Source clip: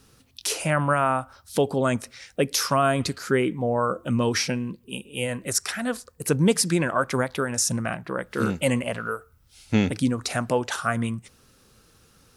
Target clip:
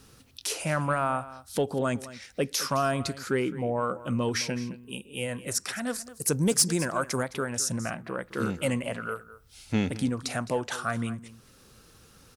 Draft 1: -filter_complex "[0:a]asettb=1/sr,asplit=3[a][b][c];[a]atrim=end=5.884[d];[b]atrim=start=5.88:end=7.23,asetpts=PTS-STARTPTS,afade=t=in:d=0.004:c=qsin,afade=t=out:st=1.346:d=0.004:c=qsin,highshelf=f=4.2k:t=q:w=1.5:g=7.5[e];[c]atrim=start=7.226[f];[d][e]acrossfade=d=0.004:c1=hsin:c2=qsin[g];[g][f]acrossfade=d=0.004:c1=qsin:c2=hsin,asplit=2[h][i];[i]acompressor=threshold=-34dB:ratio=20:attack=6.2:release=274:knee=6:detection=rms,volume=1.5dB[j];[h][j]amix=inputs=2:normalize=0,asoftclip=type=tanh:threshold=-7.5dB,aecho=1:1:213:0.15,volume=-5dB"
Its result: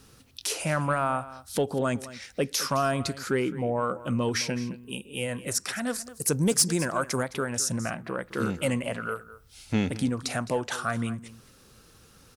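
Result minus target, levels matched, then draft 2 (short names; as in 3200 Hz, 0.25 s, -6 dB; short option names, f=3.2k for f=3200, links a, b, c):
compressor: peak gain reduction -10 dB
-filter_complex "[0:a]asettb=1/sr,asplit=3[a][b][c];[a]atrim=end=5.884[d];[b]atrim=start=5.88:end=7.23,asetpts=PTS-STARTPTS,afade=t=in:d=0.004:c=qsin,afade=t=out:st=1.346:d=0.004:c=qsin,highshelf=f=4.2k:t=q:w=1.5:g=7.5[e];[c]atrim=start=7.226[f];[d][e]acrossfade=d=0.004:c1=hsin:c2=qsin[g];[g][f]acrossfade=d=0.004:c1=qsin:c2=hsin,asplit=2[h][i];[i]acompressor=threshold=-44.5dB:ratio=20:attack=6.2:release=274:knee=6:detection=rms,volume=1.5dB[j];[h][j]amix=inputs=2:normalize=0,asoftclip=type=tanh:threshold=-7.5dB,aecho=1:1:213:0.15,volume=-5dB"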